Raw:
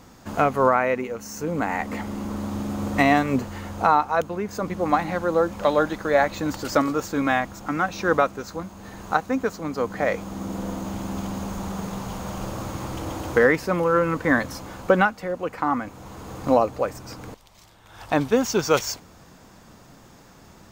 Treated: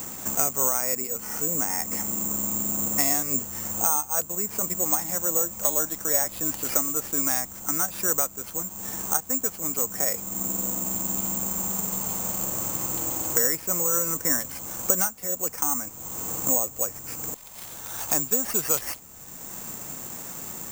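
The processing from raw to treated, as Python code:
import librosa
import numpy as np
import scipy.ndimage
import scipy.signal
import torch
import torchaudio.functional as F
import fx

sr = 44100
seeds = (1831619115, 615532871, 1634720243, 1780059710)

p1 = fx.quant_float(x, sr, bits=2)
p2 = x + (p1 * librosa.db_to_amplitude(-4.5))
p3 = (np.kron(p2[::6], np.eye(6)[0]) * 6)[:len(p2)]
p4 = fx.band_squash(p3, sr, depth_pct=70)
y = p4 * librosa.db_to_amplitude(-15.0)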